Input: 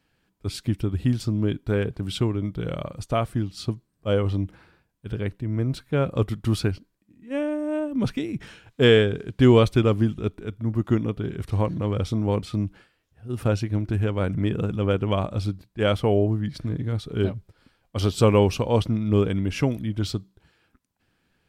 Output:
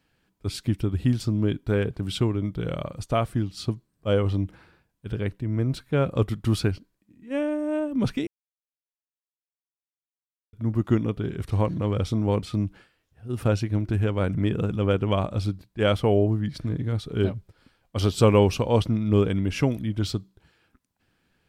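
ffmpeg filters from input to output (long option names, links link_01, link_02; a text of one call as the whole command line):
ffmpeg -i in.wav -filter_complex "[0:a]asplit=3[link_01][link_02][link_03];[link_01]atrim=end=8.27,asetpts=PTS-STARTPTS,afade=type=out:start_time=8.266:duration=0.004:curve=hsin[link_04];[link_02]atrim=start=8.27:end=10.53,asetpts=PTS-STARTPTS,volume=0[link_05];[link_03]atrim=start=10.53,asetpts=PTS-STARTPTS,afade=type=in:duration=0.004:curve=hsin[link_06];[link_04][link_05][link_06]concat=n=3:v=0:a=1" out.wav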